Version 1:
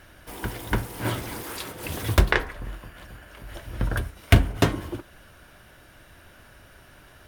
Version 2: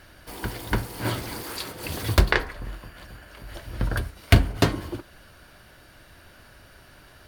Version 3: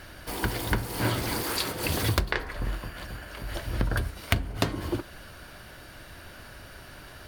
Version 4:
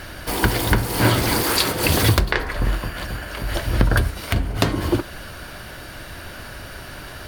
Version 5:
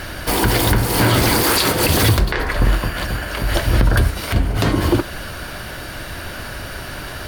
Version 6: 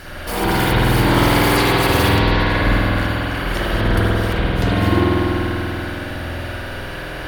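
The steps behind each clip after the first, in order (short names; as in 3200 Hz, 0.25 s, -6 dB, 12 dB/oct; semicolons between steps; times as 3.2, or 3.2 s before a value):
bell 4500 Hz +9 dB 0.22 oct
compressor 10:1, threshold -27 dBFS, peak gain reduction 18 dB; gain +5 dB
maximiser +11 dB; gain -1 dB
limiter -11 dBFS, peak gain reduction 9 dB; gain +6 dB
reverb RT60 3.8 s, pre-delay 48 ms, DRR -10 dB; gain -8 dB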